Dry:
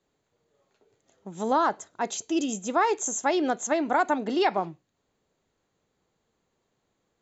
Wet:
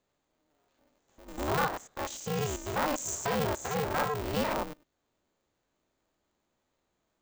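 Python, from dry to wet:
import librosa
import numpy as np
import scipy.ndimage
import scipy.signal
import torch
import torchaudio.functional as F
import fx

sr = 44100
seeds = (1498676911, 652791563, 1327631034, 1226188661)

y = fx.spec_steps(x, sr, hold_ms=100)
y = y * np.sign(np.sin(2.0 * np.pi * 150.0 * np.arange(len(y)) / sr))
y = y * 10.0 ** (-2.0 / 20.0)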